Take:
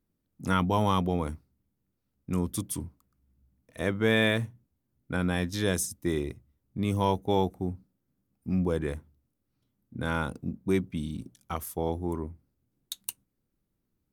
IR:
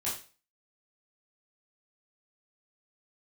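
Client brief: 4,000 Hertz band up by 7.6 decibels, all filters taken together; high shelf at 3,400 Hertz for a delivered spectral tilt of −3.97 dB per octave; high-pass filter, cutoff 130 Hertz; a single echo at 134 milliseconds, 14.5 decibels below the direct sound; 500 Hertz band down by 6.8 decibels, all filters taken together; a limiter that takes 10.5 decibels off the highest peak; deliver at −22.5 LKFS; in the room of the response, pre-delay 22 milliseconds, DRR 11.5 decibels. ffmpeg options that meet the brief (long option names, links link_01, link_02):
-filter_complex "[0:a]highpass=130,equalizer=frequency=500:width_type=o:gain=-9,highshelf=frequency=3400:gain=8.5,equalizer=frequency=4000:width_type=o:gain=4,alimiter=limit=-16.5dB:level=0:latency=1,aecho=1:1:134:0.188,asplit=2[link_01][link_02];[1:a]atrim=start_sample=2205,adelay=22[link_03];[link_02][link_03]afir=irnorm=-1:irlink=0,volume=-15.5dB[link_04];[link_01][link_04]amix=inputs=2:normalize=0,volume=9dB"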